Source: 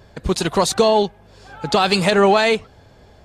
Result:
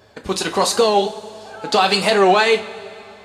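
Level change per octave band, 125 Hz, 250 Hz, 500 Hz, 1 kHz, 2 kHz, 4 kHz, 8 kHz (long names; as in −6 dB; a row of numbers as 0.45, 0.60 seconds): −6.0, −3.0, 0.0, +2.0, +2.0, +2.0, +1.5 decibels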